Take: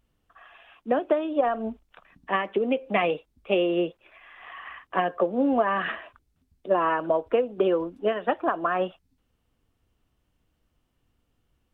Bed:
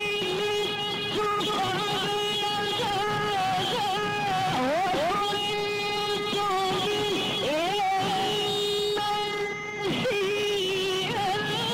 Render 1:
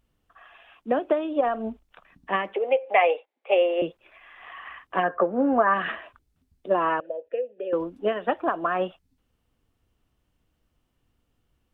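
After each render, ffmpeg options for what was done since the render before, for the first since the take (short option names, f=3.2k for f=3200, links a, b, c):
-filter_complex "[0:a]asettb=1/sr,asplit=3[a][b][c];[a]atrim=end=2.544[d];[b]atrim=start=2.54:end=3.82,asetpts=PTS-STARTPTS,afade=t=in:d=0.004:c=qsin,afade=t=out:st=1.276:d=0.004:c=qsin,highpass=f=440:w=0.5412,highpass=f=440:w=1.3066,equalizer=f=530:t=q:w=4:g=6,equalizer=f=800:t=q:w=4:g=9,equalizer=f=1.3k:t=q:w=4:g=-3,equalizer=f=2.1k:t=q:w=4:g=6,lowpass=f=3.3k:w=0.5412,lowpass=f=3.3k:w=1.3066[e];[c]atrim=start=3.816[f];[d][e]acrossfade=d=0.004:c1=hsin:c2=qsin[g];[g][f]acrossfade=d=0.004:c1=qsin:c2=hsin,asettb=1/sr,asplit=3[h][i][j];[h]atrim=end=5.034[k];[i]atrim=start=5.03:end=5.74,asetpts=PTS-STARTPTS,afade=t=in:d=0.004:c=qsin,afade=t=out:st=0.706:d=0.004:c=qsin,lowpass=f=1.5k:t=q:w=2.6[l];[j]atrim=start=5.736[m];[k][l]acrossfade=d=0.004:c1=hsin:c2=qsin[n];[n][m]acrossfade=d=0.004:c1=qsin:c2=hsin,asettb=1/sr,asplit=3[o][p][q];[o]atrim=end=7.004[r];[p]atrim=start=7:end=7.73,asetpts=PTS-STARTPTS,afade=t=in:d=0.004:c=qsin,afade=t=out:st=0.726:d=0.004:c=qsin,asplit=3[s][t][u];[s]bandpass=f=530:t=q:w=8,volume=0dB[v];[t]bandpass=f=1.84k:t=q:w=8,volume=-6dB[w];[u]bandpass=f=2.48k:t=q:w=8,volume=-9dB[x];[v][w][x]amix=inputs=3:normalize=0[y];[q]atrim=start=7.726[z];[r][y]acrossfade=d=0.004:c1=hsin:c2=qsin[aa];[aa][z]acrossfade=d=0.004:c1=qsin:c2=hsin"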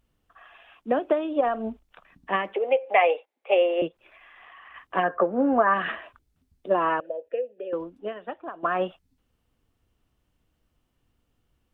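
-filter_complex "[0:a]asplit=3[a][b][c];[a]afade=t=out:st=3.87:d=0.02[d];[b]acompressor=threshold=-48dB:ratio=2.5:attack=3.2:release=140:knee=1:detection=peak,afade=t=in:st=3.87:d=0.02,afade=t=out:st=4.74:d=0.02[e];[c]afade=t=in:st=4.74:d=0.02[f];[d][e][f]amix=inputs=3:normalize=0,asplit=2[g][h];[g]atrim=end=8.63,asetpts=PTS-STARTPTS,afade=t=out:st=7.37:d=1.26:c=qua:silence=0.251189[i];[h]atrim=start=8.63,asetpts=PTS-STARTPTS,afade=t=in:d=0.004:c=hsin:silence=0.251189[j];[i][j]concat=n=2:v=0:a=1"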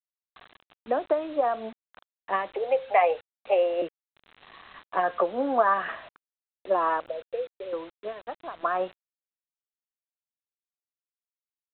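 -af "bandpass=f=860:t=q:w=0.8:csg=0,aresample=8000,acrusher=bits=7:mix=0:aa=0.000001,aresample=44100"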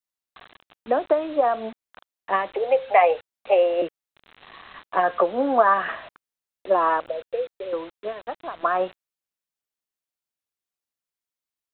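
-af "volume=4.5dB"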